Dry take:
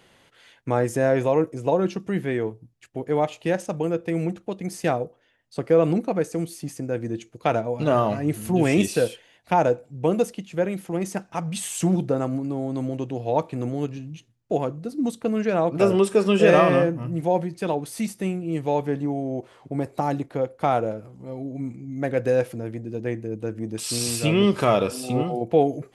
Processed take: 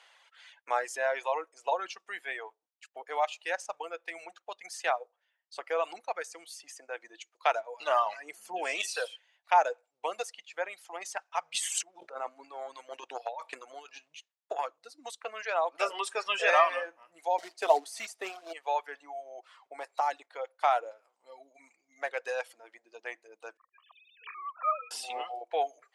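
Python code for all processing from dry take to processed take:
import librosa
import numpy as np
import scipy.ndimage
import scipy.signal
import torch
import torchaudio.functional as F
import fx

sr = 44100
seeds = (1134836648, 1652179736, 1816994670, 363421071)

y = fx.chain(x, sr, fx.tilt_shelf(db=5.5, hz=730.0),
    fx.notch(hz=3800.0, q=11.0), at=(8.31, 8.75))
y = fx.chain(y, sr, fx.peak_eq(hz=66.0, db=6.5, octaves=2.9),
    fx.over_compress(threshold_db=-26.0, ratio=-1.0),
    fx.transient(attack_db=9, sustain_db=-1), at=(11.54, 14.65))
y = fx.chain(y, sr, fx.quant_float(bits=2),
    fx.small_body(hz=(280.0, 400.0, 650.0), ring_ms=55, db=17), at=(17.38, 18.53))
y = fx.chain(y, sr, fx.sine_speech(),
    fx.ladder_bandpass(hz=1200.0, resonance_pct=55),
    fx.comb(ms=1.7, depth=0.71), at=(23.57, 24.91))
y = scipy.signal.sosfilt(scipy.signal.butter(4, 740.0, 'highpass', fs=sr, output='sos'), y)
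y = fx.dereverb_blind(y, sr, rt60_s=1.6)
y = scipy.signal.sosfilt(scipy.signal.butter(2, 7400.0, 'lowpass', fs=sr, output='sos'), y)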